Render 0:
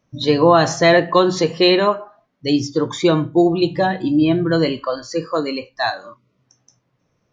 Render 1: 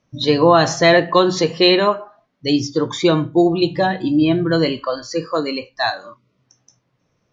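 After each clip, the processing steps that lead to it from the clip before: LPF 5700 Hz 12 dB/oct; high shelf 4500 Hz +7.5 dB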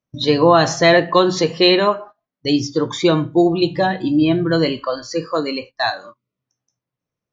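gate -35 dBFS, range -18 dB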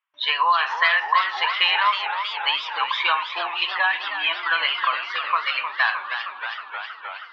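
elliptic band-pass 1000–3100 Hz, stop band 70 dB; compressor, threshold -25 dBFS, peak gain reduction 11.5 dB; warbling echo 0.314 s, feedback 78%, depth 160 cents, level -9 dB; gain +8.5 dB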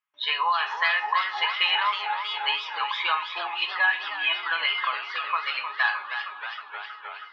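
resonator 420 Hz, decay 0.32 s, harmonics all, mix 80%; gain +7.5 dB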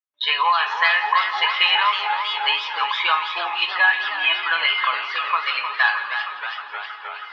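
gate with hold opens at -35 dBFS; reverse; upward compressor, threshold -39 dBFS; reverse; split-band echo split 1000 Hz, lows 0.382 s, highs 0.17 s, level -14 dB; gain +5.5 dB

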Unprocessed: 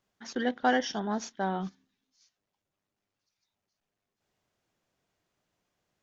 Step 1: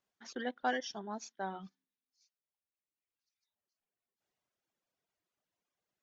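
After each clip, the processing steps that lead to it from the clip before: reverb removal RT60 1.8 s; low shelf 170 Hz -10 dB; gain -6.5 dB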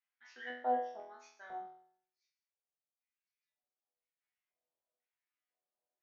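LFO band-pass square 1 Hz 610–2100 Hz; resonator bank E2 fifth, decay 0.63 s; gain +16 dB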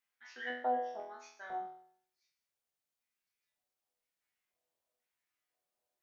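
compressor 2:1, threshold -37 dBFS, peak gain reduction 6 dB; gain +4.5 dB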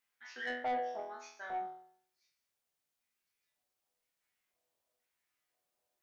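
soft clip -33 dBFS, distortion -10 dB; gain +3 dB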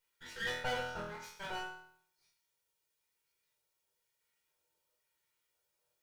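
minimum comb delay 2.1 ms; on a send at -1 dB: reverb, pre-delay 3 ms; on the sum: gain +2 dB

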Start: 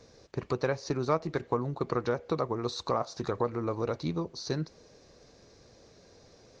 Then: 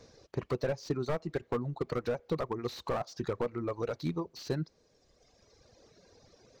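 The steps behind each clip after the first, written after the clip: reverb removal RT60 2 s; slew limiter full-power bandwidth 27 Hz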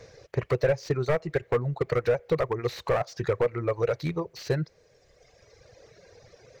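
ten-band EQ 125 Hz +6 dB, 250 Hz -11 dB, 500 Hz +7 dB, 1000 Hz -3 dB, 2000 Hz +8 dB, 4000 Hz -3 dB; gain +5 dB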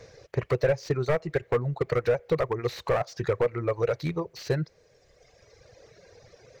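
nothing audible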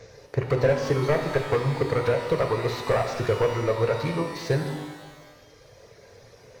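shimmer reverb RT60 1.3 s, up +12 st, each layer -8 dB, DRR 4 dB; gain +1.5 dB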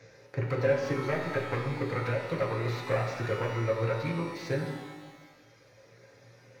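reverb, pre-delay 3 ms, DRR 2.5 dB; gain -9 dB

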